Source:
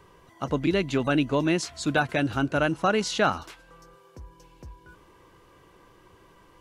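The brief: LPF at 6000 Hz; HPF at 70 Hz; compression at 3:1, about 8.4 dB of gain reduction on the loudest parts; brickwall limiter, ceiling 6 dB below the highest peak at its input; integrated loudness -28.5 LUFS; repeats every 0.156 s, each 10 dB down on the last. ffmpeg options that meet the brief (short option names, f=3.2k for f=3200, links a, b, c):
-af "highpass=70,lowpass=6k,acompressor=threshold=-30dB:ratio=3,alimiter=limit=-22.5dB:level=0:latency=1,aecho=1:1:156|312|468|624:0.316|0.101|0.0324|0.0104,volume=6dB"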